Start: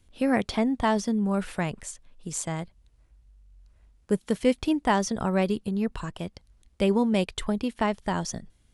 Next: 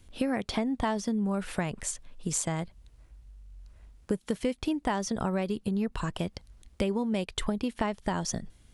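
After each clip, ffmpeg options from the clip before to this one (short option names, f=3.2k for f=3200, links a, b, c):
-af "acompressor=threshold=-32dB:ratio=6,volume=5.5dB"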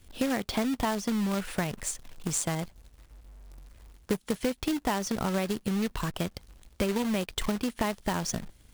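-af "acrusher=bits=2:mode=log:mix=0:aa=0.000001"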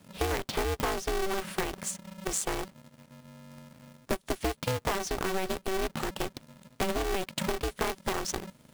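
-af "aeval=exprs='val(0)*sgn(sin(2*PI*190*n/s))':c=same,volume=-1.5dB"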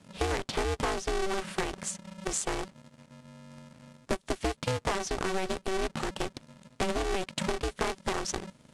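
-af "lowpass=f=9.7k:w=0.5412,lowpass=f=9.7k:w=1.3066"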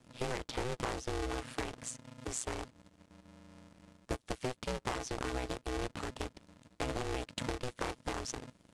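-af "aeval=exprs='val(0)*sin(2*PI*61*n/s)':c=same,volume=-4dB"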